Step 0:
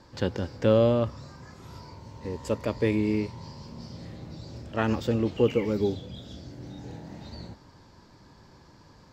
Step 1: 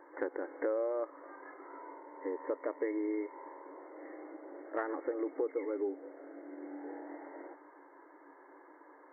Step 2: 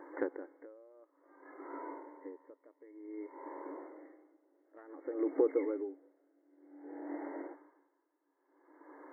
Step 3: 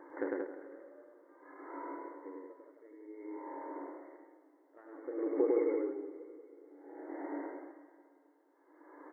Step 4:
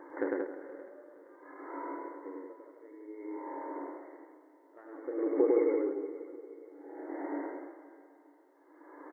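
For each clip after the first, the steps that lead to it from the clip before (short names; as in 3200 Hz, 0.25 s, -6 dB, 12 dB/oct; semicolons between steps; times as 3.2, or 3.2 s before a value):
FFT band-pass 270–2200 Hz; compressor 4:1, threshold -34 dBFS, peak gain reduction 14 dB; gain +1 dB
bell 230 Hz +7.5 dB 1.5 oct; dB-linear tremolo 0.55 Hz, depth 30 dB; gain +2.5 dB
loudspeakers at several distances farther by 12 m -9 dB, 35 m -1 dB, 62 m -4 dB; plate-style reverb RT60 2.6 s, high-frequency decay 0.9×, pre-delay 0.115 s, DRR 13.5 dB; gain -2.5 dB
feedback echo 0.47 s, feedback 36%, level -18.5 dB; gain +3.5 dB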